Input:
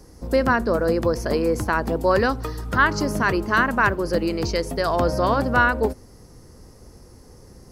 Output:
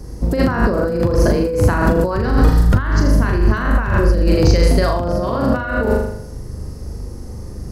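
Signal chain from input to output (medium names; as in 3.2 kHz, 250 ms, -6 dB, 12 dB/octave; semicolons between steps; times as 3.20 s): 2.15–4.28 s: bass shelf 76 Hz +10.5 dB; flutter echo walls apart 6.9 m, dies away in 0.72 s; compressor with a negative ratio -22 dBFS, ratio -1; bass shelf 280 Hz +11.5 dB; trim +1 dB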